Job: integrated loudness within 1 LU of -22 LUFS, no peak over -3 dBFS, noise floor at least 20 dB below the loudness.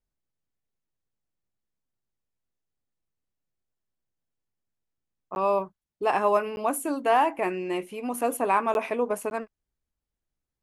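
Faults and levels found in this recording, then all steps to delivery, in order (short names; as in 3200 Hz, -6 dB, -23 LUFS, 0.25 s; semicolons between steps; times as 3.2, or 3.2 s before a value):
dropouts 4; longest dropout 11 ms; loudness -26.5 LUFS; peak -11.0 dBFS; loudness target -22.0 LUFS
-> interpolate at 5.35/6.56/8.74/9.3, 11 ms; gain +4.5 dB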